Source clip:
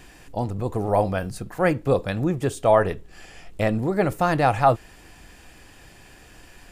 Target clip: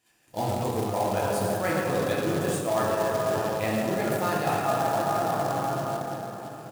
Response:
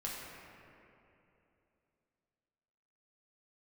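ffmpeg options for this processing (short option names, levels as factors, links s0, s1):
-filter_complex "[0:a]crystalizer=i=3:c=0,agate=range=0.0501:threshold=0.01:ratio=16:detection=peak,highpass=130,highshelf=f=5600:g=-5.5,bandreject=f=60:t=h:w=6,bandreject=f=120:t=h:w=6,bandreject=f=180:t=h:w=6,bandreject=f=240:t=h:w=6,bandreject=f=300:t=h:w=6,bandreject=f=360:t=h:w=6,bandreject=f=420:t=h:w=6,bandreject=f=480:t=h:w=6,aecho=1:1:113:0.266[s0];[1:a]atrim=start_sample=2205,asetrate=28224,aresample=44100[s1];[s0][s1]afir=irnorm=-1:irlink=0,acrusher=bits=3:mode=log:mix=0:aa=0.000001,areverse,acompressor=threshold=0.0708:ratio=6,areverse"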